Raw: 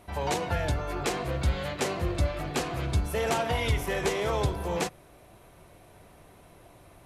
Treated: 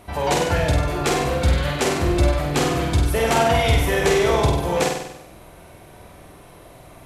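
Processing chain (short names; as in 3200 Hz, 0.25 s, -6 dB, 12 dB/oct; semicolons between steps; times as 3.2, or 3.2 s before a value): flutter echo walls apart 8.3 m, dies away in 0.81 s; gain +7 dB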